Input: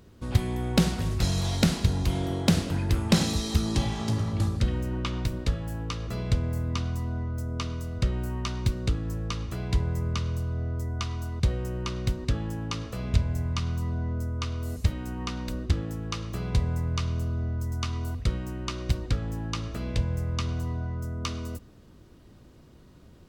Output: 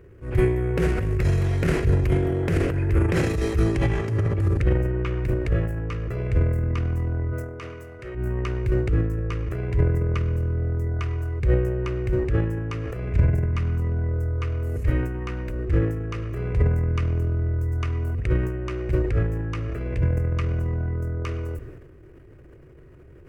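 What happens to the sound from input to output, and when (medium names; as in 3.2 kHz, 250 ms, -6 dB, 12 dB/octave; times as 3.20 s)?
7.31–8.14 s: high-pass 340 Hz -> 740 Hz 6 dB/octave
whole clip: FFT filter 140 Hz 0 dB, 210 Hz -16 dB, 380 Hz +5 dB, 840 Hz -11 dB, 1.8 kHz 0 dB, 2.5 kHz -4 dB, 3.7 kHz -22 dB, 10 kHz -14 dB; transient shaper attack -8 dB, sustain +9 dB; trim +5.5 dB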